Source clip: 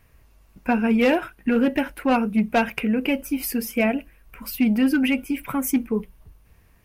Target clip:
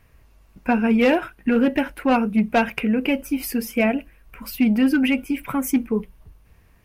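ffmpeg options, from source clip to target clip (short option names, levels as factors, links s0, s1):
-af "highshelf=f=7100:g=-4.5,volume=1.19"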